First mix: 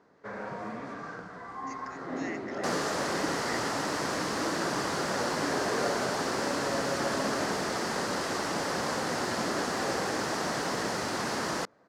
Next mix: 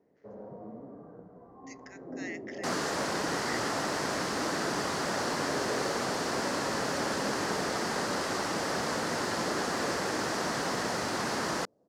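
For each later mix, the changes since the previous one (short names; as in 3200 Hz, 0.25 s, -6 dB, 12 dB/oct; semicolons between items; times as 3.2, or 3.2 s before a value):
first sound: add ladder low-pass 760 Hz, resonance 20%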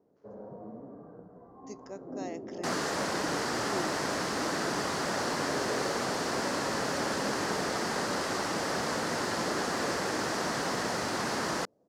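speech: remove resonant high-pass 1900 Hz, resonance Q 5.3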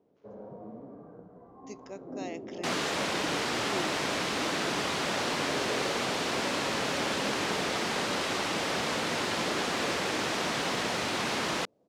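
master: add band shelf 2900 Hz +8.5 dB 1 oct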